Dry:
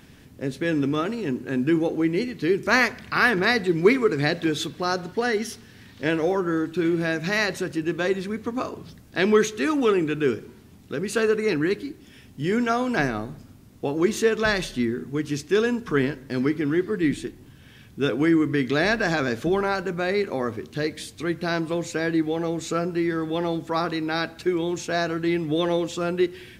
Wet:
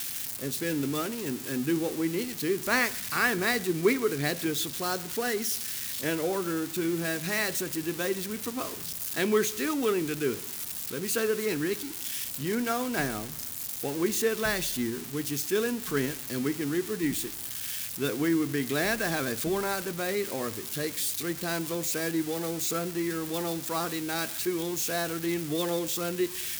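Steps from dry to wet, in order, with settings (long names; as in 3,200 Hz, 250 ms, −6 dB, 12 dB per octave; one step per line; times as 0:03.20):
spike at every zero crossing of −17.5 dBFS
level −6.5 dB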